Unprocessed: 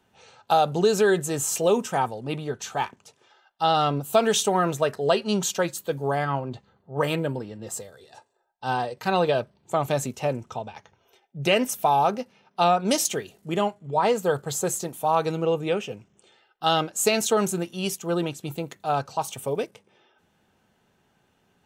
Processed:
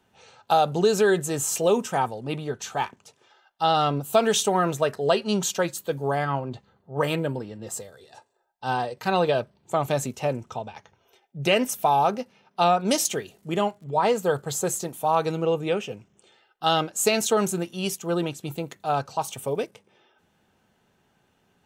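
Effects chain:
0:12.77–0:14.22: surface crackle 31 per second −46 dBFS

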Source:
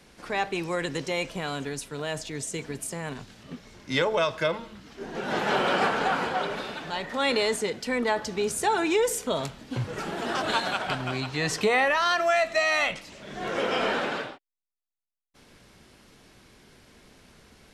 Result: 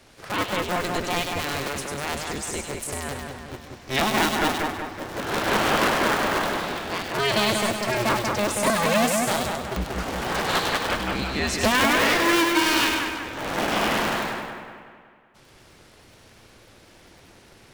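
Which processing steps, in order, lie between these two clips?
sub-harmonics by changed cycles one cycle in 2, inverted
echo with a time of its own for lows and highs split 2,600 Hz, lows 186 ms, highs 99 ms, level −3.5 dB
level +1.5 dB

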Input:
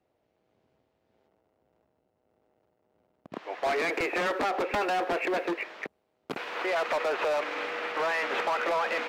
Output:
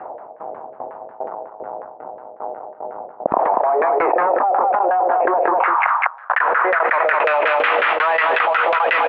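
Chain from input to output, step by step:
0:08.13–0:08.75: Chebyshev low-pass filter 4,700 Hz, order 6
auto-filter low-pass saw down 5.5 Hz 500–1,700 Hz
shaped tremolo saw down 2.5 Hz, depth 95%
band-pass filter sweep 850 Hz → 3,100 Hz, 0:05.79–0:07.52
0:05.58–0:06.41: frequency shifter +320 Hz
on a send: single-tap delay 202 ms −12 dB
on the sum: envelope flattener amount 100%
level +7 dB

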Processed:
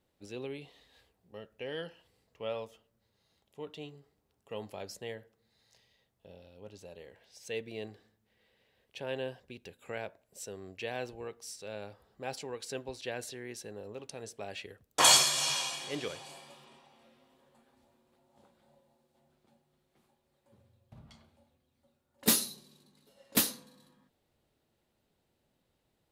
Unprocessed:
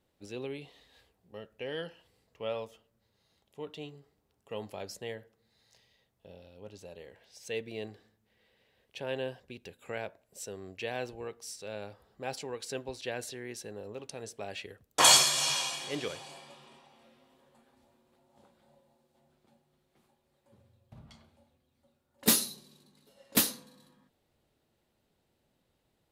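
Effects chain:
0:16.25–0:16.65: high-shelf EQ 12,000 Hz +11.5 dB
level −1.5 dB

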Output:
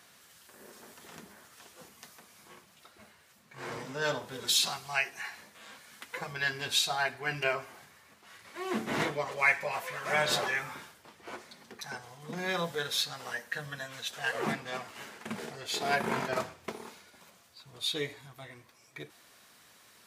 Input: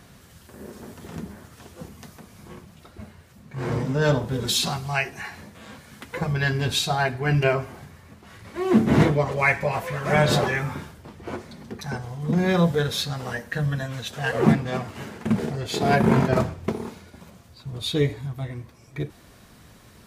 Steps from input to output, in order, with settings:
high-pass filter 1,300 Hz 6 dB per octave
level −2.5 dB

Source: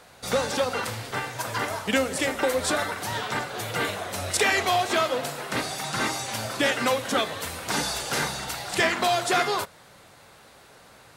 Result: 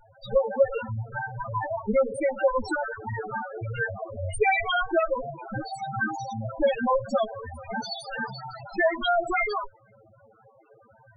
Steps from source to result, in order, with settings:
lower of the sound and its delayed copy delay 9 ms
spectral peaks only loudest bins 4
level +6.5 dB

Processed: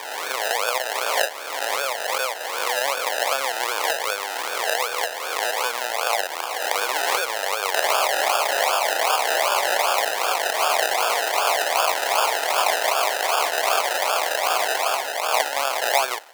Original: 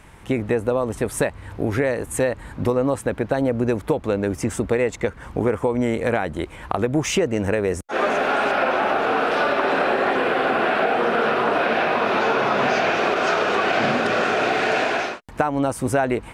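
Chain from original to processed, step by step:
peak hold with a rise ahead of every peak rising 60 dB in 1.99 s
dynamic equaliser 2,900 Hz, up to +6 dB, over −36 dBFS, Q 1.1
sample-and-hold swept by an LFO 31×, swing 60% 2.6 Hz
high-pass filter 660 Hz 24 dB per octave
0:07.74–0:10.06: multiband upward and downward compressor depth 100%
level −1.5 dB

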